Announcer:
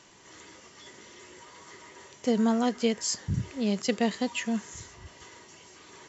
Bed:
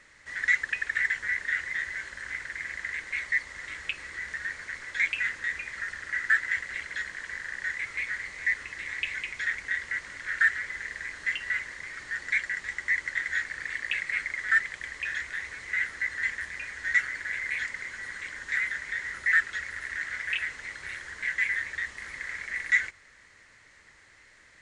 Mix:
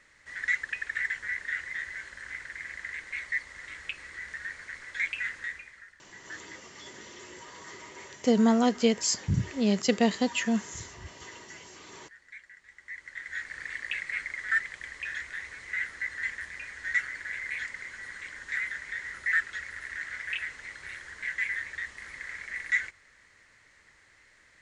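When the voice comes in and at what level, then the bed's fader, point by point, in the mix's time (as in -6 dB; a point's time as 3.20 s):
6.00 s, +2.5 dB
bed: 5.44 s -4 dB
5.97 s -20.5 dB
12.64 s -20.5 dB
13.56 s -3.5 dB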